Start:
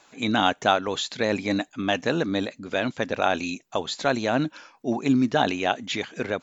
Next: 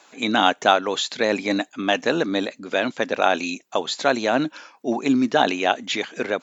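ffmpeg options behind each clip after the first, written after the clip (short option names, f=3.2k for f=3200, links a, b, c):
-af "highpass=240,volume=4dB"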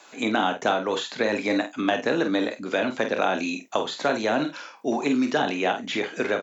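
-filter_complex "[0:a]acrossover=split=280|1000|2200[a][b][c][d];[a]acompressor=threshold=-33dB:ratio=4[e];[b]acompressor=threshold=-26dB:ratio=4[f];[c]acompressor=threshold=-32dB:ratio=4[g];[d]acompressor=threshold=-38dB:ratio=4[h];[e][f][g][h]amix=inputs=4:normalize=0,asplit=2[i][j];[j]adelay=48,volume=-8dB[k];[i][k]amix=inputs=2:normalize=0,asplit=2[l][m];[m]aecho=0:1:27|50:0.266|0.133[n];[l][n]amix=inputs=2:normalize=0,volume=1.5dB"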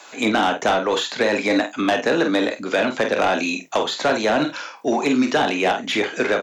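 -filter_complex "[0:a]acrossover=split=400[a][b];[a]flanger=delay=4.4:depth=6.3:regen=79:speed=1.4:shape=triangular[c];[b]asoftclip=type=tanh:threshold=-20dB[d];[c][d]amix=inputs=2:normalize=0,volume=7.5dB"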